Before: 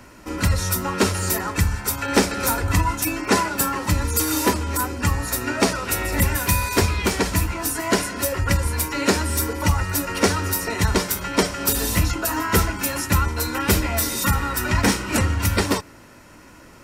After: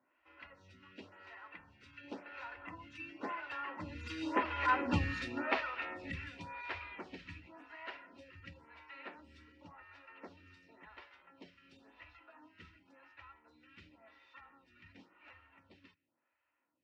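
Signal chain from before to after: Doppler pass-by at 4.89, 8 m/s, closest 1.8 m; speaker cabinet 120–3600 Hz, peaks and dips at 120 Hz -8 dB, 200 Hz -9 dB, 420 Hz -9 dB, 1900 Hz +4 dB, 2700 Hz +7 dB; photocell phaser 0.93 Hz; gain -1 dB

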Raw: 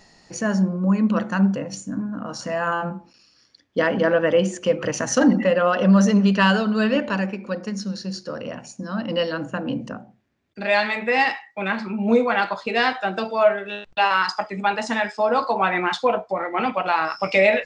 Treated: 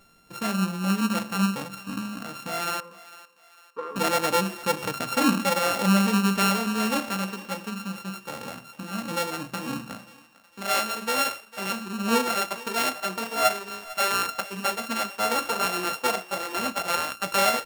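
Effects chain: sample sorter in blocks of 32 samples; 2.8–3.96 double band-pass 710 Hz, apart 1.2 oct; on a send: thinning echo 0.451 s, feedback 46%, high-pass 600 Hz, level -17 dB; on the sum: gain -5.5 dB

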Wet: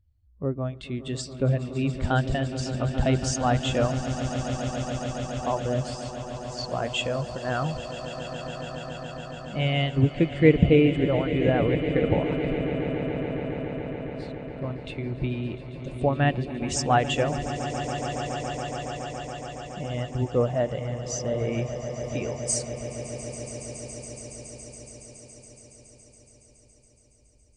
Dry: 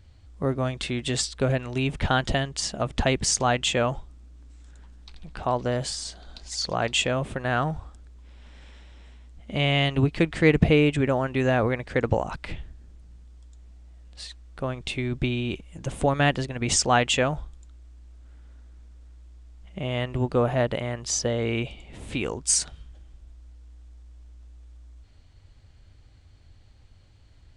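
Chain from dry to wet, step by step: swelling echo 0.14 s, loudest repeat 8, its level -11 dB; spectral expander 1.5:1

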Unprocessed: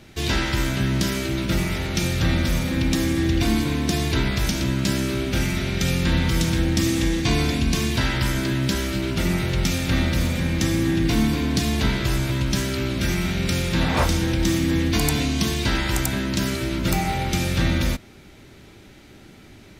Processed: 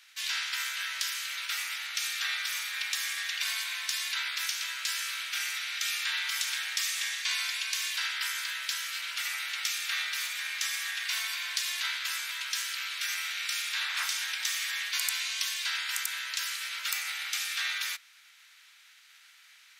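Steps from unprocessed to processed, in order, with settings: spectral limiter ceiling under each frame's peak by 17 dB; HPF 1400 Hz 24 dB/oct; gain -8.5 dB

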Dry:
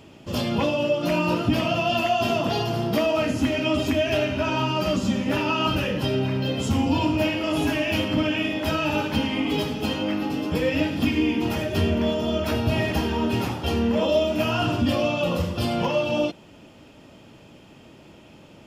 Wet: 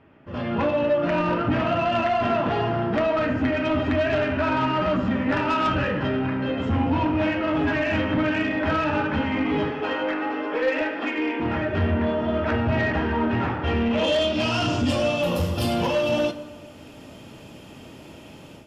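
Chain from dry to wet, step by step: 9.7–11.4 HPF 360 Hz 24 dB/oct; AGC gain up to 12.5 dB; low-pass sweep 1700 Hz -> 12000 Hz, 13.58–15.26; soft clip -9 dBFS, distortion -15 dB; reverb RT60 1.6 s, pre-delay 6 ms, DRR 10 dB; gain -8 dB

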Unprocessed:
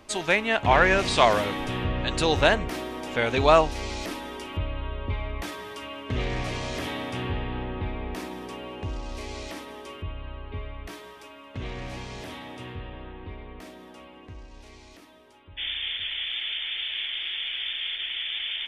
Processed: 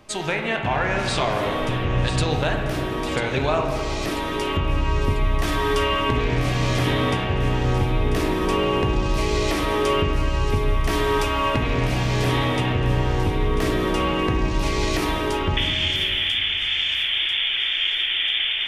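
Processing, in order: recorder AGC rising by 12 dB/s; bell 140 Hz +11 dB 0.33 oct; compressor 2.5:1, threshold -23 dBFS, peak gain reduction 8 dB; thin delay 0.992 s, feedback 48%, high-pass 3300 Hz, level -8.5 dB; on a send at -2 dB: reverb RT60 2.4 s, pre-delay 15 ms

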